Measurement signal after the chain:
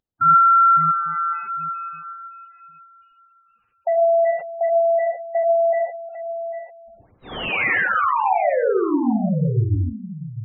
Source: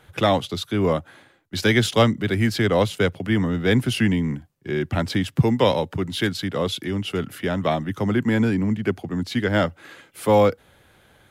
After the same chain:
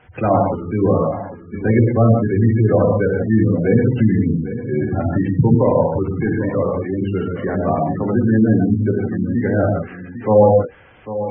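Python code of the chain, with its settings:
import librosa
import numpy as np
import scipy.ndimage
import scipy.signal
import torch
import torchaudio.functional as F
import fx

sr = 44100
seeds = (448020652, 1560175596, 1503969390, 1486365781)

p1 = fx.cvsd(x, sr, bps=16000)
p2 = p1 + fx.echo_single(p1, sr, ms=798, db=-12.0, dry=0)
p3 = fx.rev_gated(p2, sr, seeds[0], gate_ms=190, shape='flat', drr_db=-1.5)
p4 = fx.spec_gate(p3, sr, threshold_db=-20, keep='strong')
y = F.gain(torch.from_numpy(p4), 2.5).numpy()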